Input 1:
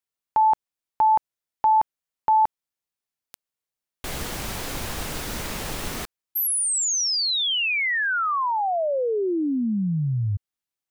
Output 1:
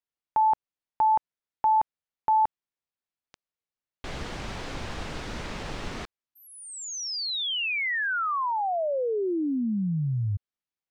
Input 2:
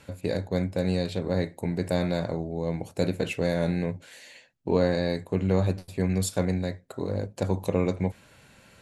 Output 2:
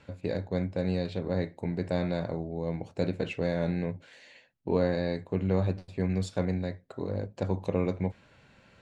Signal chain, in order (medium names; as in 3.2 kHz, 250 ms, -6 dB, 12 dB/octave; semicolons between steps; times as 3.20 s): distance through air 120 m; trim -3 dB